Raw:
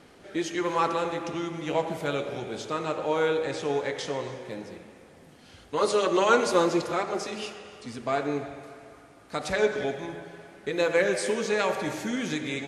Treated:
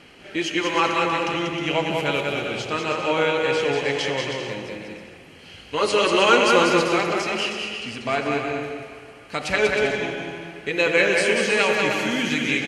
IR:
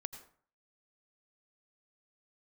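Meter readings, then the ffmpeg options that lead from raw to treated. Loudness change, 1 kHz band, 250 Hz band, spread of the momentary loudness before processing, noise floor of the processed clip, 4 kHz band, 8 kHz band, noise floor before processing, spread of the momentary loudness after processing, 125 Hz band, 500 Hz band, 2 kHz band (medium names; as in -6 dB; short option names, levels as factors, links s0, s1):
+6.5 dB, +5.5 dB, +5.0 dB, 15 LU, -45 dBFS, +11.0 dB, +5.0 dB, -53 dBFS, 14 LU, +5.5 dB, +4.5 dB, +10.5 dB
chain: -filter_complex "[0:a]equalizer=f=2800:w=1.3:g=13.5,bandreject=f=3600:w=6.9,aecho=1:1:190|313.5|393.8|446|479.9:0.631|0.398|0.251|0.158|0.1,asplit=2[s0][s1];[1:a]atrim=start_sample=2205,lowshelf=f=350:g=6.5[s2];[s1][s2]afir=irnorm=-1:irlink=0,volume=0.631[s3];[s0][s3]amix=inputs=2:normalize=0,volume=0.794"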